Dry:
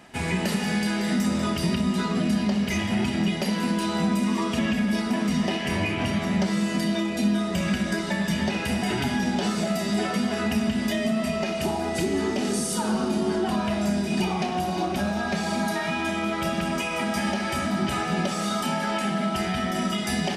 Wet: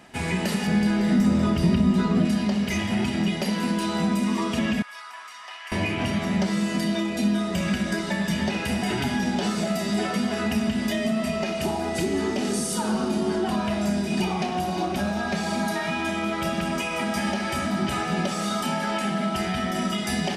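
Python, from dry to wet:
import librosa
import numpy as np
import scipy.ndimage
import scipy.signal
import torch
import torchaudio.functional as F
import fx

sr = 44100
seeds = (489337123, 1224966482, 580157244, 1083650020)

y = fx.tilt_eq(x, sr, slope=-2.0, at=(0.67, 2.25))
y = fx.ladder_highpass(y, sr, hz=1000.0, resonance_pct=55, at=(4.82, 5.72))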